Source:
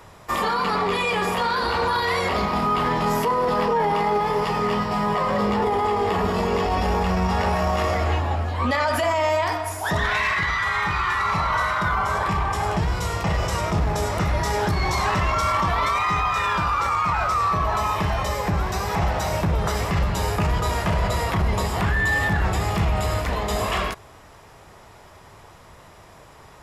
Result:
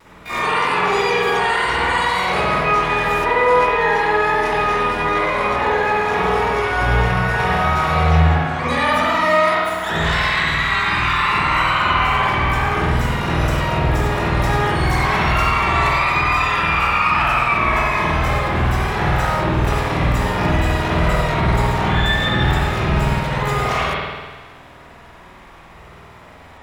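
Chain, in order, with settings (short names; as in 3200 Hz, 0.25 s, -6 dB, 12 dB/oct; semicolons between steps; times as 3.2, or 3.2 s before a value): LPF 11000 Hz 24 dB/oct; notches 50/100/150/200 Hz; harmoniser +12 st -3 dB; spring tank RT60 1.5 s, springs 50 ms, chirp 60 ms, DRR -8 dB; vibrato 0.54 Hz 19 cents; gain -5 dB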